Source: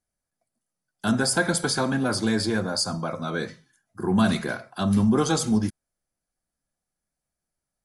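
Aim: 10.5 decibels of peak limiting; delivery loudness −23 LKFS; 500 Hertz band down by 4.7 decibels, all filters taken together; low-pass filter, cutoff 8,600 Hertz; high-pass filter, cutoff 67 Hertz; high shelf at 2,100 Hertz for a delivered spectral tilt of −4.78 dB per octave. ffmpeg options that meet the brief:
ffmpeg -i in.wav -af "highpass=67,lowpass=8600,equalizer=frequency=500:width_type=o:gain=-6,highshelf=frequency=2100:gain=-3.5,volume=8dB,alimiter=limit=-13.5dB:level=0:latency=1" out.wav

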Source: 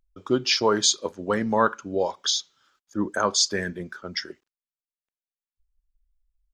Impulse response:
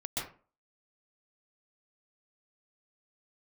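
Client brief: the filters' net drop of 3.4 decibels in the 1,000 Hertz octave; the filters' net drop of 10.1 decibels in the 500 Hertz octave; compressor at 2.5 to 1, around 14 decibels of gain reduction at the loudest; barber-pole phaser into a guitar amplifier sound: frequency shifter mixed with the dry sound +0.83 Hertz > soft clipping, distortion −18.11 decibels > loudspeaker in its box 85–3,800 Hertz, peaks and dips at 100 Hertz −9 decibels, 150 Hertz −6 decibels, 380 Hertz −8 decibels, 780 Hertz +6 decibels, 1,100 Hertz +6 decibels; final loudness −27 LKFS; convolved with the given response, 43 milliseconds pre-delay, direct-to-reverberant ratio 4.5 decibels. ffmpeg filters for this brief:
-filter_complex "[0:a]equalizer=frequency=500:width_type=o:gain=-7.5,equalizer=frequency=1000:width_type=o:gain=-8,acompressor=threshold=-39dB:ratio=2.5,asplit=2[link_01][link_02];[1:a]atrim=start_sample=2205,adelay=43[link_03];[link_02][link_03]afir=irnorm=-1:irlink=0,volume=-8dB[link_04];[link_01][link_04]amix=inputs=2:normalize=0,asplit=2[link_05][link_06];[link_06]afreqshift=0.83[link_07];[link_05][link_07]amix=inputs=2:normalize=1,asoftclip=threshold=-30dB,highpass=85,equalizer=frequency=100:width_type=q:width=4:gain=-9,equalizer=frequency=150:width_type=q:width=4:gain=-6,equalizer=frequency=380:width_type=q:width=4:gain=-8,equalizer=frequency=780:width_type=q:width=4:gain=6,equalizer=frequency=1100:width_type=q:width=4:gain=6,lowpass=frequency=3800:width=0.5412,lowpass=frequency=3800:width=1.3066,volume=17dB"

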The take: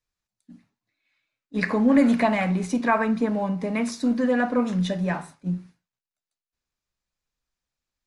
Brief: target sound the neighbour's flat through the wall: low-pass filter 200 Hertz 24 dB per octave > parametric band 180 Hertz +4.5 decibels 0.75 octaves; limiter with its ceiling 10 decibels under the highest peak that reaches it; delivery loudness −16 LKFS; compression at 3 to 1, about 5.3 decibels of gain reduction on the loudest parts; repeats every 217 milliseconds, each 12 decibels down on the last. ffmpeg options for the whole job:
ffmpeg -i in.wav -af "acompressor=threshold=-21dB:ratio=3,alimiter=limit=-20dB:level=0:latency=1,lowpass=frequency=200:width=0.5412,lowpass=frequency=200:width=1.3066,equalizer=frequency=180:width_type=o:width=0.75:gain=4.5,aecho=1:1:217|434|651:0.251|0.0628|0.0157,volume=14dB" out.wav

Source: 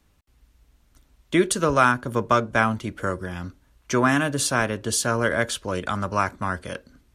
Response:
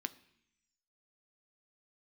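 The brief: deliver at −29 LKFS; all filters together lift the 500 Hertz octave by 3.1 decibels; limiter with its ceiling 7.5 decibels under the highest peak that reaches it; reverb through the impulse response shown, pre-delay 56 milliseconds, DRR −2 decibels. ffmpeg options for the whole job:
-filter_complex "[0:a]equalizer=frequency=500:width_type=o:gain=4,alimiter=limit=-10.5dB:level=0:latency=1,asplit=2[link_01][link_02];[1:a]atrim=start_sample=2205,adelay=56[link_03];[link_02][link_03]afir=irnorm=-1:irlink=0,volume=3dB[link_04];[link_01][link_04]amix=inputs=2:normalize=0,volume=-8.5dB"

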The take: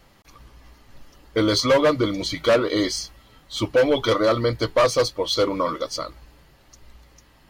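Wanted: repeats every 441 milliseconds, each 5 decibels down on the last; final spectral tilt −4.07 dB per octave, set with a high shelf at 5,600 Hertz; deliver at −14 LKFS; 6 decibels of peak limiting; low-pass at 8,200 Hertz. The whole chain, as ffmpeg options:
ffmpeg -i in.wav -af "lowpass=8200,highshelf=frequency=5600:gain=4.5,alimiter=limit=-14dB:level=0:latency=1,aecho=1:1:441|882|1323|1764|2205|2646|3087:0.562|0.315|0.176|0.0988|0.0553|0.031|0.0173,volume=8.5dB" out.wav

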